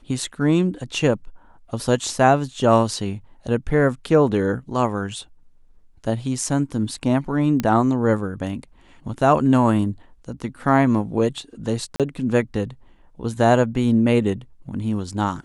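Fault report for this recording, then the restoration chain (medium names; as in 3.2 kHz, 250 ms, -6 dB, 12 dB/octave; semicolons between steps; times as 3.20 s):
7.60 s: pop -9 dBFS
11.96–12.00 s: dropout 37 ms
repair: de-click; interpolate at 11.96 s, 37 ms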